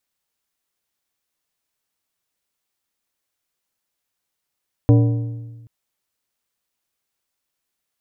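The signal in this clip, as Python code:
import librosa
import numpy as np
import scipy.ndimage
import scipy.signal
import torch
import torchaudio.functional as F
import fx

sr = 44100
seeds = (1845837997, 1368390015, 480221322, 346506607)

y = fx.strike_metal(sr, length_s=0.78, level_db=-8, body='plate', hz=116.0, decay_s=1.4, tilt_db=6.0, modes=6)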